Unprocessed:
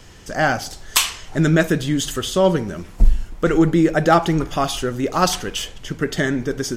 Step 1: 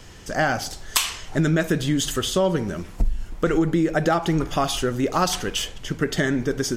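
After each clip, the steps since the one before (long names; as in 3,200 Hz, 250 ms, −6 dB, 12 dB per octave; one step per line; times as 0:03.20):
downward compressor 10 to 1, threshold −16 dBFS, peak gain reduction 10 dB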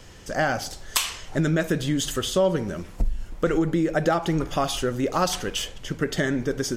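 parametric band 540 Hz +4.5 dB 0.26 octaves
level −2.5 dB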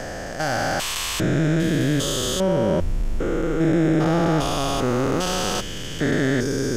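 spectrum averaged block by block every 400 ms
level +7.5 dB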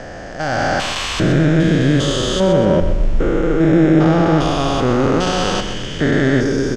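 high-frequency loss of the air 100 metres
automatic gain control gain up to 7.5 dB
repeating echo 126 ms, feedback 45%, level −10 dB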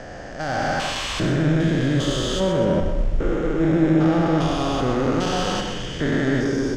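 in parallel at −7 dB: hard clipping −18.5 dBFS, distortion −6 dB
on the sum: convolution reverb RT60 0.85 s, pre-delay 53 ms, DRR 7 dB
level −8.5 dB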